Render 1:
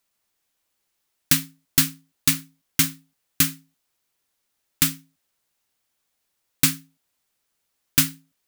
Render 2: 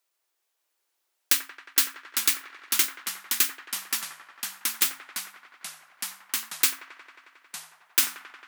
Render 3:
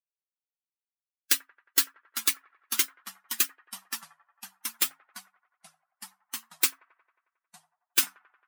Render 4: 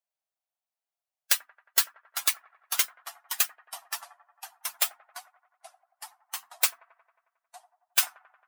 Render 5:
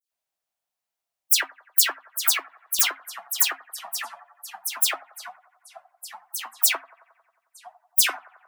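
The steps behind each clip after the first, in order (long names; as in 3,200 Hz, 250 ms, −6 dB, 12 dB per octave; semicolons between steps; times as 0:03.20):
elliptic high-pass filter 340 Hz, stop band 40 dB; delay with pitch and tempo change per echo 606 ms, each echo −3 semitones, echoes 3, each echo −6 dB; delay with a band-pass on its return 90 ms, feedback 81%, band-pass 930 Hz, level −9 dB; level −2 dB
spectral dynamics exaggerated over time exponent 2; level +1.5 dB
high-pass with resonance 680 Hz, resonance Q 4.9
all-pass dispersion lows, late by 119 ms, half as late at 2,800 Hz; level +5.5 dB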